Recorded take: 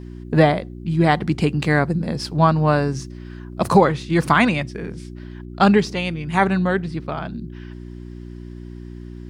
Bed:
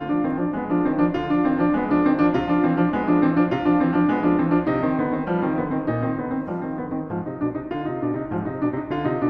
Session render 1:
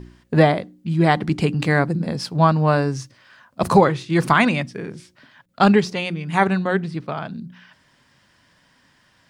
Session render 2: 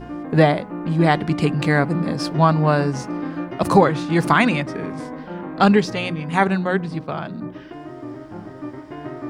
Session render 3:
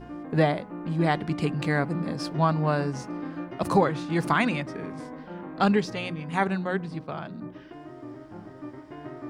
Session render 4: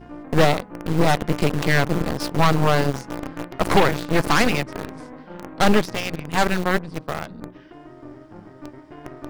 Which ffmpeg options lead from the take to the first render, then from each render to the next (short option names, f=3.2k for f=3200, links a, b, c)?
-af "bandreject=f=60:t=h:w=4,bandreject=f=120:t=h:w=4,bandreject=f=180:t=h:w=4,bandreject=f=240:t=h:w=4,bandreject=f=300:t=h:w=4,bandreject=f=360:t=h:w=4"
-filter_complex "[1:a]volume=-9dB[a];[0:a][a]amix=inputs=2:normalize=0"
-af "volume=-7.5dB"
-filter_complex "[0:a]aeval=exprs='0.376*(cos(1*acos(clip(val(0)/0.376,-1,1)))-cos(1*PI/2))+0.0188*(cos(2*acos(clip(val(0)/0.376,-1,1)))-cos(2*PI/2))+0.0944*(cos(8*acos(clip(val(0)/0.376,-1,1)))-cos(8*PI/2))':c=same,asplit=2[a][b];[b]acrusher=bits=3:mix=0:aa=0.000001,volume=-7dB[c];[a][c]amix=inputs=2:normalize=0"